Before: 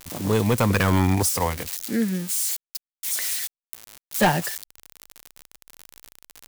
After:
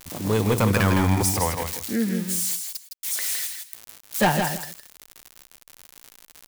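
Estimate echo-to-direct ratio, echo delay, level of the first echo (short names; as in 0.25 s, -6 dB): -6.0 dB, 0.162 s, -6.0 dB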